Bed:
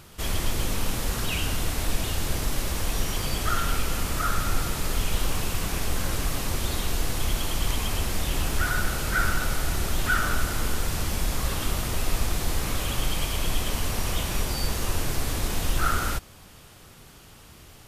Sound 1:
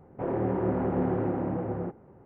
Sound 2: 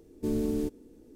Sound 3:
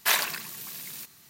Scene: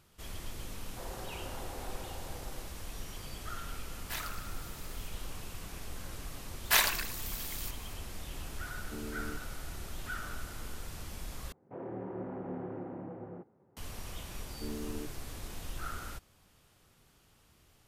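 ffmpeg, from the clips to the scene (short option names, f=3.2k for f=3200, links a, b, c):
-filter_complex "[1:a]asplit=2[a][b];[3:a]asplit=2[c][d];[2:a]asplit=2[e][f];[0:a]volume=-16dB[g];[a]highpass=750[h];[b]highpass=110[i];[g]asplit=2[j][k];[j]atrim=end=11.524[l];[i]atrim=end=2.25,asetpts=PTS-STARTPTS,volume=-12.5dB[m];[k]atrim=start=13.766[n];[h]atrim=end=2.25,asetpts=PTS-STARTPTS,volume=-9dB,afade=t=in:d=0.004:c=hsin,afade=t=out:st=2.246:d=0.004:c=hsin,adelay=770[o];[c]atrim=end=1.29,asetpts=PTS-STARTPTS,volume=-17dB,afade=t=in:d=0.004:c=hsin,afade=t=out:st=1.286:d=0.004:c=hsin,adelay=4040[p];[d]atrim=end=1.29,asetpts=PTS-STARTPTS,volume=-2dB,afade=t=in:d=0.004:c=hsin,afade=t=out:st=1.286:d=0.004:c=hsin,adelay=6650[q];[e]atrim=end=1.15,asetpts=PTS-STARTPTS,volume=-14dB,afade=t=in:d=0.004:c=hsin,afade=t=out:st=1.146:d=0.004:c=hsin,adelay=8680[r];[f]atrim=end=1.15,asetpts=PTS-STARTPTS,volume=-12dB,afade=t=in:d=0.004:c=hsin,afade=t=out:st=1.146:d=0.004:c=hsin,adelay=14380[s];[l][m]acrossfade=d=0.004:c1=hsin:c2=hsin[t];[t][n]acrossfade=d=0.004:c1=hsin:c2=hsin[u];[u][o][p][q][r][s]amix=inputs=6:normalize=0"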